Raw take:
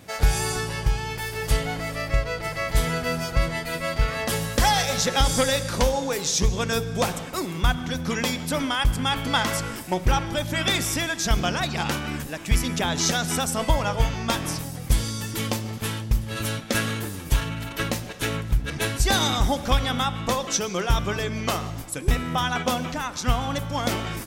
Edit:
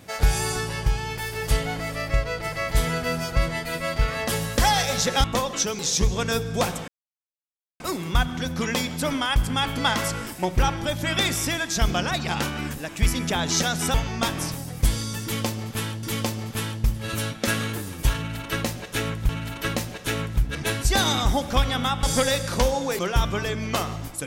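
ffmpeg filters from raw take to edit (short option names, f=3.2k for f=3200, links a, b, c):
-filter_complex "[0:a]asplit=9[a][b][c][d][e][f][g][h][i];[a]atrim=end=5.242[j];[b]atrim=start=20.178:end=20.732[k];[c]atrim=start=6.198:end=7.29,asetpts=PTS-STARTPTS,afade=t=out:st=1.088:d=0.004:c=hsin,apad=pad_dur=0.92[l];[d]atrim=start=7.29:end=13.432,asetpts=PTS-STARTPTS,afade=t=in:d=0.004:c=hsin[m];[e]atrim=start=14.008:end=16.102[n];[f]atrim=start=15.298:end=18.562[o];[g]atrim=start=17.438:end=20.182[p];[h]atrim=start=5.238:end=6.202[q];[i]atrim=start=20.728[r];[j][k]acrossfade=d=0.004:c1=hsin:c2=hsin[s];[l][m]concat=n=2:v=0:a=1[t];[s][t]acrossfade=d=0.004:c1=hsin:c2=hsin[u];[u][n]acrossfade=d=0.004:c1=hsin:c2=hsin[v];[v][o]acrossfade=d=0.004:c1=hsin:c2=hsin[w];[w][p]acrossfade=d=0.004:c1=hsin:c2=hsin[x];[x][q]acrossfade=d=0.004:c1=hsin:c2=hsin[y];[y][r]acrossfade=d=0.004:c1=hsin:c2=hsin"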